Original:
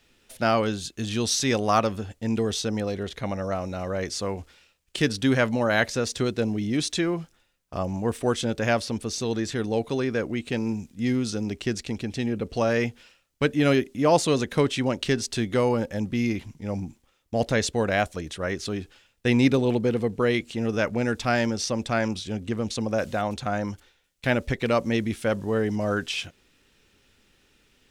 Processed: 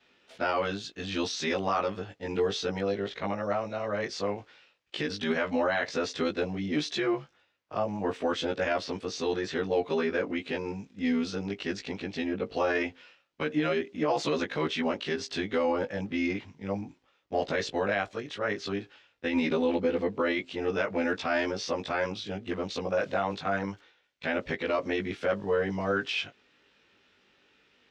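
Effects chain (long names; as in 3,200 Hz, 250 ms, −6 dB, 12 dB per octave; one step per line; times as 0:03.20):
every overlapping window played backwards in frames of 40 ms
high-pass filter 510 Hz 6 dB per octave
brickwall limiter −22.5 dBFS, peak gain reduction 10.5 dB
high-frequency loss of the air 190 metres
level +6 dB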